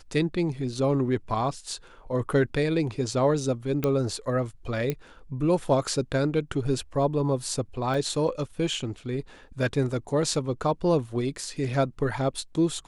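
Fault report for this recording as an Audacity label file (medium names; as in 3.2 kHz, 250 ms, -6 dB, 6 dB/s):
3.840000	3.840000	pop -12 dBFS
4.900000	4.900000	pop -14 dBFS
7.940000	7.940000	dropout 2.9 ms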